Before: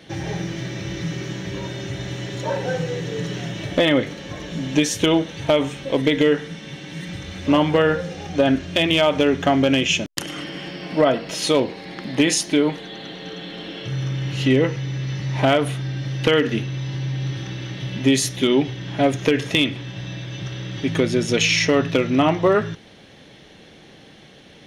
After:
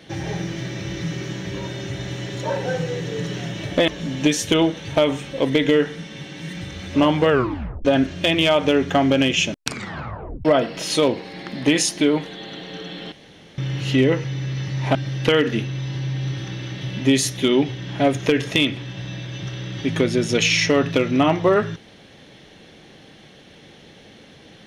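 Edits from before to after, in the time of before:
3.88–4.40 s: delete
7.82 s: tape stop 0.55 s
10.04 s: tape stop 0.93 s
13.64–14.10 s: room tone
15.47–15.94 s: delete

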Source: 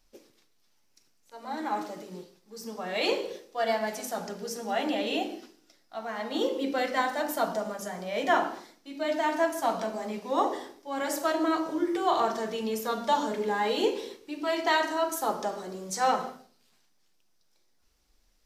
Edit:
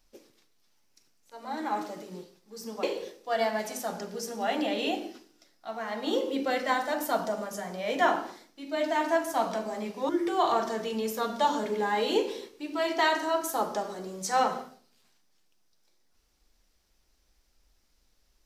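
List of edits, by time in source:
2.83–3.11 s: delete
10.37–11.77 s: delete

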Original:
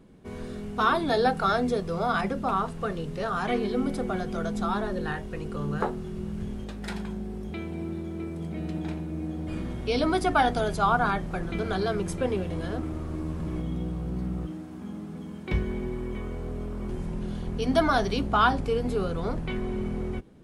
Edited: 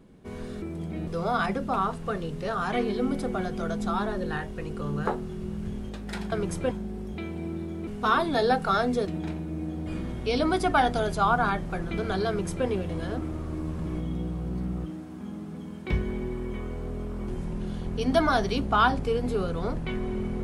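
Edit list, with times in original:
0.62–1.82 s: swap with 8.23–8.68 s
11.89–12.28 s: copy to 7.07 s

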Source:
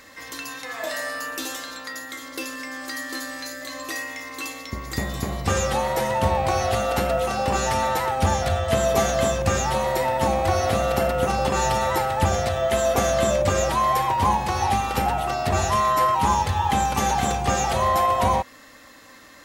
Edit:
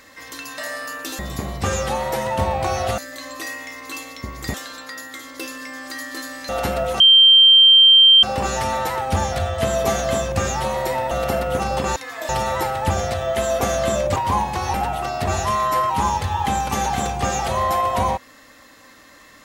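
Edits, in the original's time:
0.58–0.91 s: move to 11.64 s
1.52–3.47 s: swap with 5.03–6.82 s
7.33 s: add tone 3.15 kHz -7 dBFS 1.23 s
10.21–10.79 s: delete
13.51–14.09 s: delete
14.67–14.99 s: delete

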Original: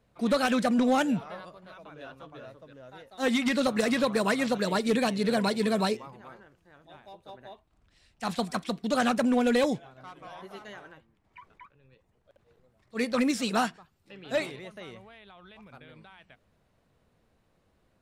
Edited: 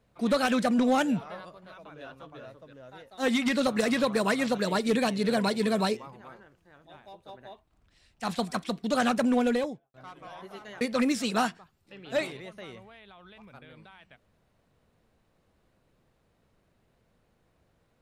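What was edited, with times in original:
9.36–9.94 s: studio fade out
10.81–13.00 s: delete

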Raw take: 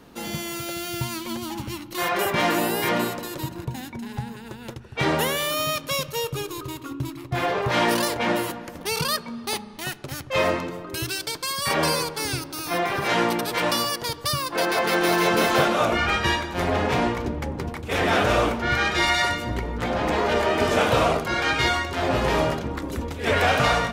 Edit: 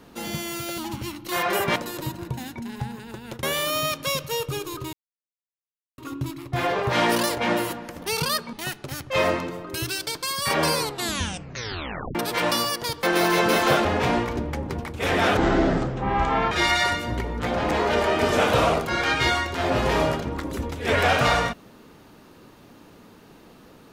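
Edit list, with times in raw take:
0.78–1.44 s: delete
2.42–3.13 s: delete
4.80–5.27 s: delete
6.77 s: insert silence 1.05 s
9.32–9.73 s: delete
11.96 s: tape stop 1.39 s
14.23–14.91 s: delete
15.73–16.74 s: delete
18.26–18.90 s: speed 56%

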